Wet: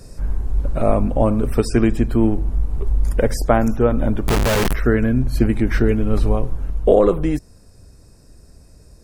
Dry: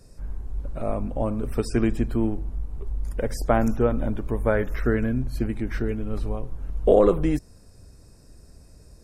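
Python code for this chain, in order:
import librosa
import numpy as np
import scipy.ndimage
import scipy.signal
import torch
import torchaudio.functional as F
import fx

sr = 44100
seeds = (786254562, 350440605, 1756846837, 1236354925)

y = fx.clip_1bit(x, sr, at=(4.28, 4.73))
y = fx.rider(y, sr, range_db=4, speed_s=0.5)
y = y * librosa.db_to_amplitude(7.0)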